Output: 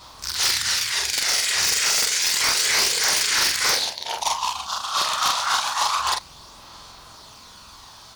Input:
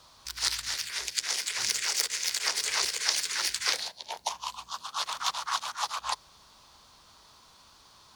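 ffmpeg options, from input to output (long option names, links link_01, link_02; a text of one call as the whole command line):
ffmpeg -i in.wav -af "afftfilt=real='re':imag='-im':win_size=4096:overlap=0.75,aphaser=in_gain=1:out_gain=1:delay=1.6:decay=0.26:speed=0.29:type=sinusoidal,aeval=exprs='0.335*sin(PI/2*7.08*val(0)/0.335)':channel_layout=same,volume=-5dB" out.wav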